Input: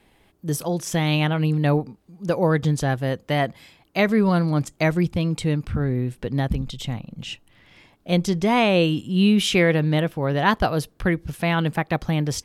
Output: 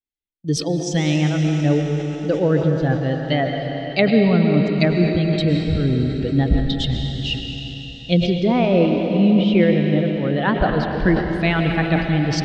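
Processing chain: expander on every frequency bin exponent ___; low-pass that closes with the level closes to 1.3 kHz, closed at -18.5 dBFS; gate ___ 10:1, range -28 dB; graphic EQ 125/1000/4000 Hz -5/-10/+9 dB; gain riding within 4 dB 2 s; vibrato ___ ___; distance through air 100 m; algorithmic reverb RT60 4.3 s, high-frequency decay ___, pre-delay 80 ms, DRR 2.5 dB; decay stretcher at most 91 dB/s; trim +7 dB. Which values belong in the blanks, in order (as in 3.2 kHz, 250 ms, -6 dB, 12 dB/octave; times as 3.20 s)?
1.5, -49 dBFS, 6.1 Hz, 18 cents, 1×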